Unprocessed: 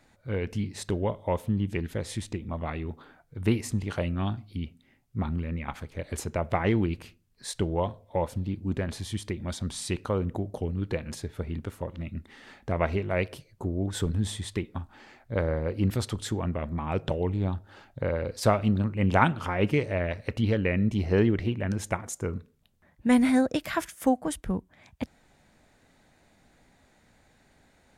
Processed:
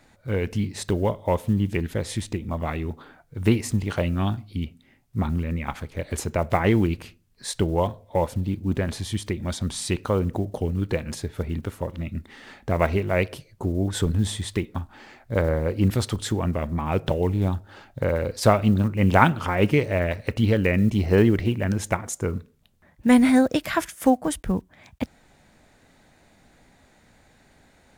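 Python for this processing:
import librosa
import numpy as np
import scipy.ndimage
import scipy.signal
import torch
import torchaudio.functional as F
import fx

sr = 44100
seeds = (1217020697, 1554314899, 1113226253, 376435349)

y = fx.block_float(x, sr, bits=7)
y = F.gain(torch.from_numpy(y), 5.0).numpy()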